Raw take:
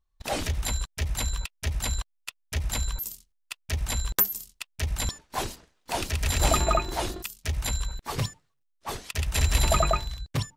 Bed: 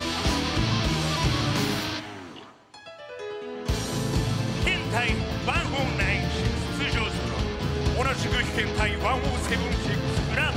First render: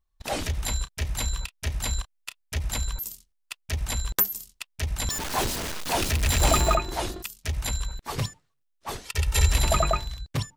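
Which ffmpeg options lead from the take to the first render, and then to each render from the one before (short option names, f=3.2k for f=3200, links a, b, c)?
-filter_complex "[0:a]asettb=1/sr,asplit=3[a][b][c];[a]atrim=end=0.554[d];[b]atrim=start=0.55:end=2.41,asetpts=PTS-STARTPTS,afade=t=in:d=0.004:c=qsin,afade=t=out:st=1.856:d=0.004:c=qsin,asplit=2[e][f];[f]adelay=31,volume=-13dB[g];[e][g]amix=inputs=2:normalize=0,atrim=end_sample=82026[h];[c]atrim=start=2.406[i];[d][h]acrossfade=d=0.004:c1=hsin:c2=qsin[j];[j][i]acrossfade=d=0.004:c1=qsin:c2=hsin,asettb=1/sr,asplit=3[k][l][m];[k]atrim=end=5.104[n];[l]atrim=start=5.1:end=6.75,asetpts=PTS-STARTPTS,afade=t=in:d=0.004:c=qsin,afade=t=out:st=1.646:d=0.004:c=qsin,aeval=exprs='val(0)+0.5*0.0531*sgn(val(0))':c=same[o];[m]atrim=start=6.746[p];[n][o]acrossfade=d=0.004:c1=hsin:c2=qsin[q];[q][p]acrossfade=d=0.004:c1=qsin:c2=hsin,asettb=1/sr,asplit=3[r][s][t];[r]atrim=end=9.054[u];[s]atrim=start=9.05:end=9.52,asetpts=PTS-STARTPTS,afade=t=in:d=0.004:c=qsin,afade=t=out:st=0.466:d=0.004:c=qsin,aecho=1:1:2.2:0.7,atrim=end_sample=20727[v];[t]atrim=start=9.516[w];[u][v]acrossfade=d=0.004:c1=hsin:c2=qsin[x];[x][w]acrossfade=d=0.004:c1=qsin:c2=hsin"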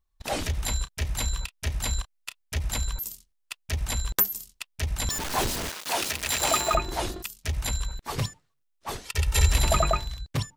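-filter_complex "[0:a]asettb=1/sr,asplit=3[a][b][c];[a]atrim=end=5.694[d];[b]atrim=start=5.69:end=6.74,asetpts=PTS-STARTPTS,afade=t=in:d=0.004:c=qsin,afade=t=out:st=1.046:d=0.004:c=qsin,highpass=f=600:p=1[e];[c]atrim=start=6.736[f];[d][e]acrossfade=d=0.004:c1=hsin:c2=qsin[g];[g][f]acrossfade=d=0.004:c1=qsin:c2=hsin"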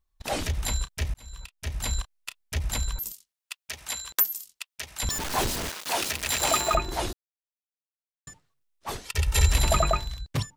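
-filter_complex "[0:a]asettb=1/sr,asplit=3[a][b][c];[a]atrim=end=3.124[d];[b]atrim=start=3.12:end=5.03,asetpts=PTS-STARTPTS,afade=t=in:d=0.004:c=qsin,afade=t=out:st=1.906:d=0.004:c=qsin,highpass=f=1.1k:p=1[e];[c]atrim=start=5.026[f];[d][e]acrossfade=d=0.004:c1=hsin:c2=qsin[g];[g][f]acrossfade=d=0.004:c1=qsin:c2=hsin,asplit=4[h][i][j][k];[h]atrim=end=1.14,asetpts=PTS-STARTPTS,afade=t=out:st=1.136:d=0.004:c=hsin[l];[i]atrim=start=1.14:end=7.13,asetpts=PTS-STARTPTS,afade=t=in:d=0.82,afade=t=out:st=5.986:d=0.004:c=hsin[m];[j]atrim=start=7.13:end=8.27,asetpts=PTS-STARTPTS,volume=0[n];[k]atrim=start=8.27,asetpts=PTS-STARTPTS,afade=t=in:d=0.004:c=hsin[o];[l][m][n][o]concat=n=4:v=0:a=1"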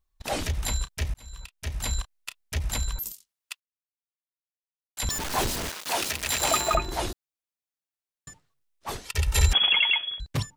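-filter_complex "[0:a]asettb=1/sr,asplit=3[a][b][c];[a]atrim=end=9.534[d];[b]atrim=start=9.53:end=10.2,asetpts=PTS-STARTPTS,afade=t=in:d=0.004:c=qsin,afade=t=out:st=0.666:d=0.004:c=qsin,lowpass=f=2.9k:t=q:w=0.5098,lowpass=f=2.9k:t=q:w=0.6013,lowpass=f=2.9k:t=q:w=0.9,lowpass=f=2.9k:t=q:w=2.563,afreqshift=-3400[e];[c]atrim=start=10.196[f];[d][e]acrossfade=d=0.004:c1=hsin:c2=qsin[g];[g][f]acrossfade=d=0.004:c1=qsin:c2=hsin,asplit=3[h][i][j];[h]atrim=end=3.6,asetpts=PTS-STARTPTS,afade=t=out:st=3.596:d=0.004:c=hsin[k];[i]atrim=start=3.6:end=4.97,asetpts=PTS-STARTPTS,volume=0[l];[j]atrim=start=4.97,asetpts=PTS-STARTPTS,afade=t=in:d=0.004:c=hsin[m];[k][l][m]concat=n=3:v=0:a=1"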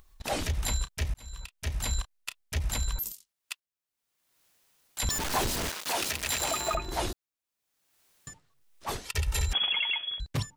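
-af "acompressor=mode=upward:threshold=-44dB:ratio=2.5,alimiter=limit=-19dB:level=0:latency=1:release=236"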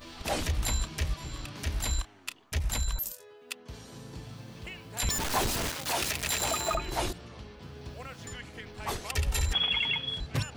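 -filter_complex "[1:a]volume=-18dB[a];[0:a][a]amix=inputs=2:normalize=0"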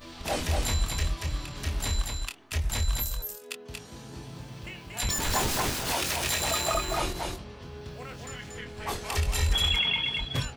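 -filter_complex "[0:a]asplit=2[a][b];[b]adelay=24,volume=-7dB[c];[a][c]amix=inputs=2:normalize=0,asplit=2[d][e];[e]aecho=0:1:233:0.668[f];[d][f]amix=inputs=2:normalize=0"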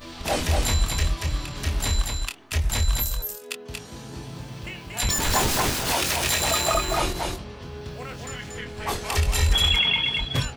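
-af "volume=5dB"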